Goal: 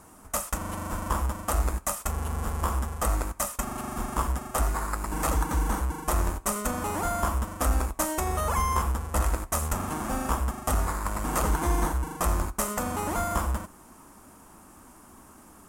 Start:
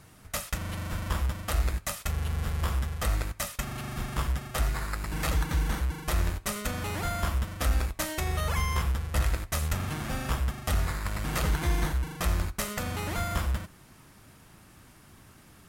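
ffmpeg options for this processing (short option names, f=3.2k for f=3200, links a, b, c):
-af "equalizer=f=125:t=o:w=1:g=-12,equalizer=f=250:t=o:w=1:g=6,equalizer=f=1k:t=o:w=1:g=8,equalizer=f=2k:t=o:w=1:g=-6,equalizer=f=4k:t=o:w=1:g=-10,equalizer=f=8k:t=o:w=1:g=6,volume=2.5dB"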